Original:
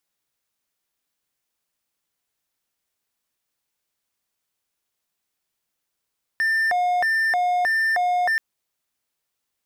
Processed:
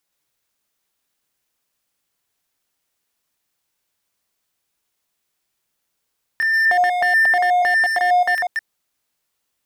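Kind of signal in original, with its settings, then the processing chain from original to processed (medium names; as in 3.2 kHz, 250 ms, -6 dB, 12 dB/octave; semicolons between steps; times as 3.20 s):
siren hi-lo 717–1790 Hz 1.6 per s triangle -16 dBFS 1.98 s
chunks repeated in reverse 121 ms, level -3 dB; in parallel at -7 dB: hard clipper -19.5 dBFS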